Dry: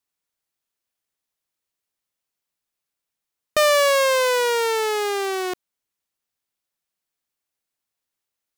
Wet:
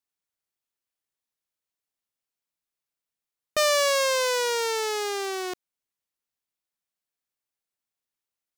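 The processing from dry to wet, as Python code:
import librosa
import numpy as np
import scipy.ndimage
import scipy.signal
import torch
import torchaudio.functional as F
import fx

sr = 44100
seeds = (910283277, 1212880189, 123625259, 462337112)

y = fx.dynamic_eq(x, sr, hz=5700.0, q=1.0, threshold_db=-37.0, ratio=4.0, max_db=7)
y = y * 10.0 ** (-6.0 / 20.0)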